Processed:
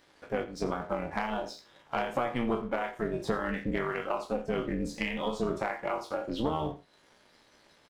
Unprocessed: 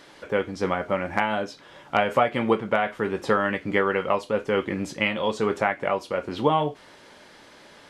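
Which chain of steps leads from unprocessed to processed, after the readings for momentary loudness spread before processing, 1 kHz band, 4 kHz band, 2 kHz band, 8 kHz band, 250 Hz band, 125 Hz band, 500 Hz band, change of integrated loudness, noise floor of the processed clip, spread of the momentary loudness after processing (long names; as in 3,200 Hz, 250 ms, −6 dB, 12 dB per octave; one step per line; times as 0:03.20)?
5 LU, −9.0 dB, −8.5 dB, −10.0 dB, −5.0 dB, −5.0 dB, −5.5 dB, −8.5 dB, −8.0 dB, −63 dBFS, 5 LU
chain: peak hold with a decay on every bin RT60 0.36 s
noise reduction from a noise print of the clip's start 11 dB
dynamic equaliser 230 Hz, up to +7 dB, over −38 dBFS, Q 0.72
downward compressor 2.5 to 1, threshold −35 dBFS, peak gain reduction 15.5 dB
leveller curve on the samples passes 1
amplitude modulation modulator 240 Hz, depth 65%
on a send: single-tap delay 85 ms −16 dB
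on the sum: level +1 dB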